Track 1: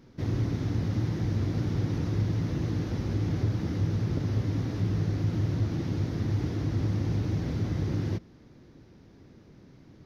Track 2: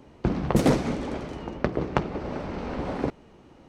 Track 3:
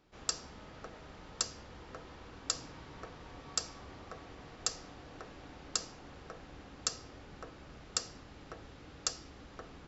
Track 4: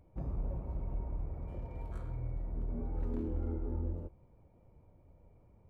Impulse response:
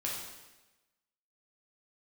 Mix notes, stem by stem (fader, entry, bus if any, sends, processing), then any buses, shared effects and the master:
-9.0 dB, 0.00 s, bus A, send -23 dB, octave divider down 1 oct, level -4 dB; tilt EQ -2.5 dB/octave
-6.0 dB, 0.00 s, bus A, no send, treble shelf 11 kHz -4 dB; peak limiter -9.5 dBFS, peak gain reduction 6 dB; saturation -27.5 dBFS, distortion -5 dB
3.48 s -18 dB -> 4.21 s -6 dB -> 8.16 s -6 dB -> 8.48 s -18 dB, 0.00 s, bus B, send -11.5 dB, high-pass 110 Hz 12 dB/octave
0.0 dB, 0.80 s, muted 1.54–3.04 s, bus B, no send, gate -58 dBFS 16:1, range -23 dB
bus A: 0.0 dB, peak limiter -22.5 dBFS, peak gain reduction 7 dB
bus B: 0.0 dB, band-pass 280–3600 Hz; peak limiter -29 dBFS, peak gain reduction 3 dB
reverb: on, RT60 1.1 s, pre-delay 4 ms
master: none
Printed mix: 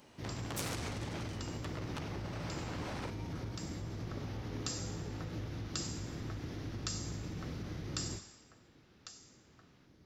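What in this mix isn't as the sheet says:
stem 4: entry 0.80 s -> 1.40 s; master: extra tilt EQ +4 dB/octave

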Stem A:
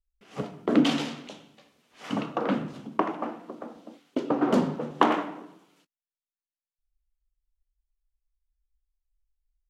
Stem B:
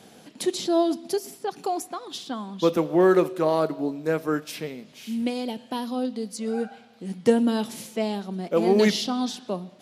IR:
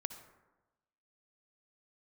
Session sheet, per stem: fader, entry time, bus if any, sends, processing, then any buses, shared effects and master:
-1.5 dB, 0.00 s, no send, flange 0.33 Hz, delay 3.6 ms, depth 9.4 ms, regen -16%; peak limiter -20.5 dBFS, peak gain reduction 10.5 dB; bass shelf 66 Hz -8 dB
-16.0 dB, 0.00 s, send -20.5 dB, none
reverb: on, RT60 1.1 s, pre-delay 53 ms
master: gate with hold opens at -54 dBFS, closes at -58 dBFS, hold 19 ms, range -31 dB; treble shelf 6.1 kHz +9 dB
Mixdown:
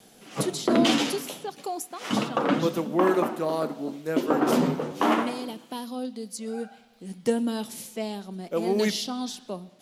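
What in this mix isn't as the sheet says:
stem A -1.5 dB -> +8.0 dB; stem B -16.0 dB -> -6.0 dB

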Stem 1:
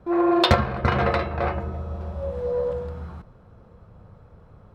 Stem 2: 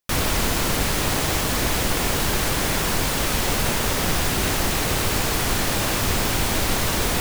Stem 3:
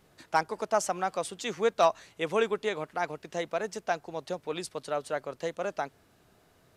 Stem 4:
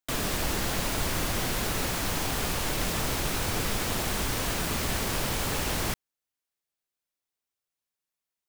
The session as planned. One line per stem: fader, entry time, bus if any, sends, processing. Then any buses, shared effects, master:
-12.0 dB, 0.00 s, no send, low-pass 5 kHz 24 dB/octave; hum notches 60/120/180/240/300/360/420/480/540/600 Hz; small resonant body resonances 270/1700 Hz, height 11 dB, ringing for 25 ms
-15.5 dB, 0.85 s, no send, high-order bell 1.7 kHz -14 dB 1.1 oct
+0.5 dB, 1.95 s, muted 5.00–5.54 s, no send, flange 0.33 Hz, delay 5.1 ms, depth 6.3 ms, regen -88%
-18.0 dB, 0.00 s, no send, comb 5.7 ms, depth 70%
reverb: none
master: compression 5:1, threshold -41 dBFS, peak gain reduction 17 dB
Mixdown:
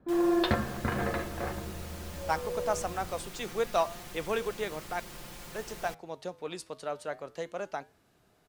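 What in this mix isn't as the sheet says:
stem 2: muted; master: missing compression 5:1, threshold -41 dBFS, peak gain reduction 17 dB

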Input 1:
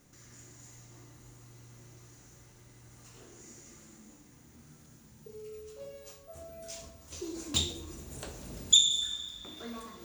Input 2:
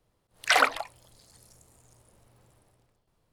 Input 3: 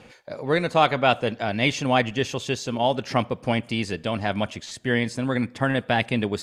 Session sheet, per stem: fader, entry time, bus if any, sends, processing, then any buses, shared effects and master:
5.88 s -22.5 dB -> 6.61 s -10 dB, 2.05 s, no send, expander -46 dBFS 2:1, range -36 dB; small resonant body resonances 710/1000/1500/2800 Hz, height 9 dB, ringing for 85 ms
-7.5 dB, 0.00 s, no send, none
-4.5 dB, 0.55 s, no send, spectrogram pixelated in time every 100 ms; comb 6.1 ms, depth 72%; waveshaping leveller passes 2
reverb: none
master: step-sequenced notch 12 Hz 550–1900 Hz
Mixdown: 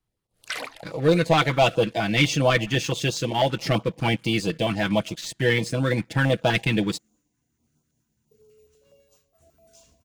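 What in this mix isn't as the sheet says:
stem 1: entry 2.05 s -> 3.05 s; stem 3: missing spectrogram pixelated in time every 100 ms

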